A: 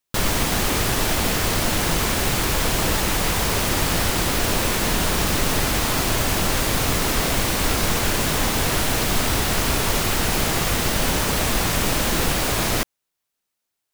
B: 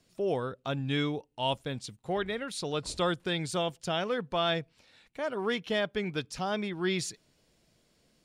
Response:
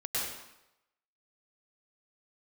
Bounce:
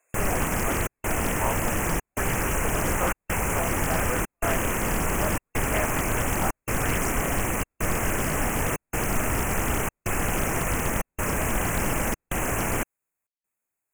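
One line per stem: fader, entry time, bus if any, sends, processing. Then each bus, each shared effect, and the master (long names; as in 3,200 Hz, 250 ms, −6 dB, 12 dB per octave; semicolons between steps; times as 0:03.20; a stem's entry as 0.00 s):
−3.5 dB, 0.00 s, no send, no processing
+2.5 dB, 0.00 s, no send, high-pass filter 560 Hz 24 dB per octave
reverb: not used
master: gate pattern "xxxxxxxxxx..x" 173 BPM −60 dB; linear-phase brick-wall band-stop 2,700–6,400 Hz; highs frequency-modulated by the lows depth 0.63 ms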